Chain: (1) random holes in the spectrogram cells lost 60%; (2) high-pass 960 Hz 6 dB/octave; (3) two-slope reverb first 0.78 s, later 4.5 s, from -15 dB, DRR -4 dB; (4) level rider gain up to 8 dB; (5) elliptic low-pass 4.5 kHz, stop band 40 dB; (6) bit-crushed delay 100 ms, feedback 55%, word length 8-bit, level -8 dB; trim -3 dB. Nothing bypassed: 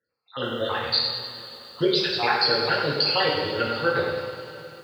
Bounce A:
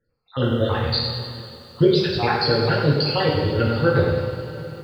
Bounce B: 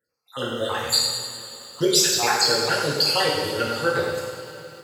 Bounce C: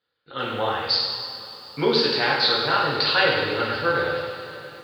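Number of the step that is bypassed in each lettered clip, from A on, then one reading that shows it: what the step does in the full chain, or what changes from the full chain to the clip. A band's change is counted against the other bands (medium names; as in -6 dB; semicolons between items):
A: 2, 125 Hz band +14.5 dB; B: 5, crest factor change +2.5 dB; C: 1, 2 kHz band +2.5 dB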